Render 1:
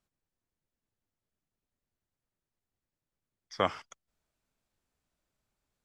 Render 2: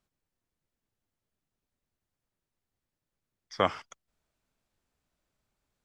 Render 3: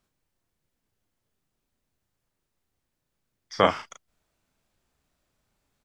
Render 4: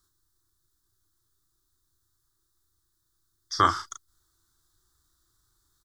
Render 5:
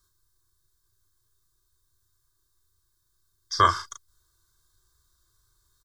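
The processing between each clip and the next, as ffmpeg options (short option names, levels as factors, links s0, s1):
-af "highshelf=f=6900:g=-3.5,volume=1.33"
-filter_complex "[0:a]asplit=2[s0][s1];[s1]adelay=36,volume=0.562[s2];[s0][s2]amix=inputs=2:normalize=0,volume=1.78"
-af "firequalizer=gain_entry='entry(100,0);entry(210,-19);entry(340,0);entry(510,-23);entry(1200,1);entry(1700,-5);entry(2500,-27);entry(3600,2);entry(9200,5)':delay=0.05:min_phase=1,volume=1.78"
-af "aecho=1:1:1.9:0.67"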